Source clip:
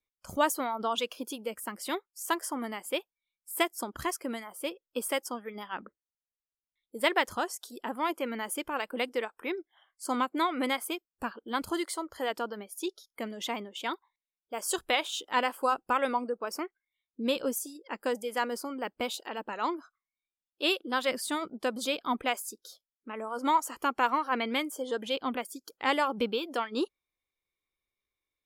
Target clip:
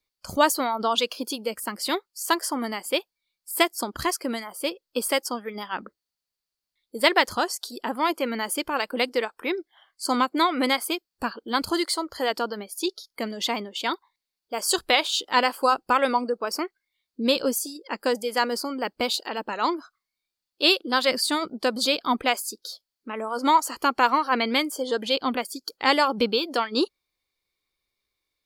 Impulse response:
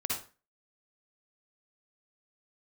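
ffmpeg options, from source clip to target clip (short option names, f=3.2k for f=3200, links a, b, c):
-af "equalizer=f=4.5k:t=o:w=0.31:g=12.5,volume=6.5dB"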